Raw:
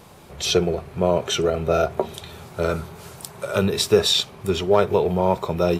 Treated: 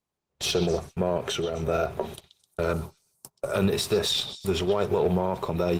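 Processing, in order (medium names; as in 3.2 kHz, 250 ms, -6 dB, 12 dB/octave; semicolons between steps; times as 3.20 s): gate -33 dBFS, range -38 dB; peak limiter -15 dBFS, peak gain reduction 10.5 dB; 1.17–1.63 s: compression 10:1, threshold -24 dBFS, peak gain reduction 6 dB; 2.73–3.52 s: high-order bell 2.4 kHz -9.5 dB; repeats whose band climbs or falls 129 ms, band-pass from 3.8 kHz, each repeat 0.7 oct, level -11 dB; Chebyshev shaper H 2 -28 dB, 3 -24 dB, 6 -34 dB, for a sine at -13 dBFS; trim +1 dB; Opus 24 kbps 48 kHz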